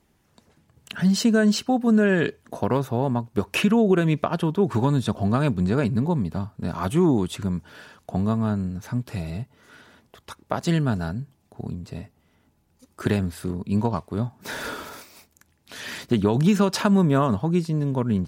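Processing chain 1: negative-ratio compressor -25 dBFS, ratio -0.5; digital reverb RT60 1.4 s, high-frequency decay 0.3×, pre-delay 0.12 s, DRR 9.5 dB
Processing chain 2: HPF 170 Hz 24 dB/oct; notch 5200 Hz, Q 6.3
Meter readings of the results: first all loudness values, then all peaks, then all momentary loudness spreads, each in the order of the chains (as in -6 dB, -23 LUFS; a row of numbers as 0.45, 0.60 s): -27.5, -24.5 LUFS; -7.5, -5.5 dBFS; 10, 17 LU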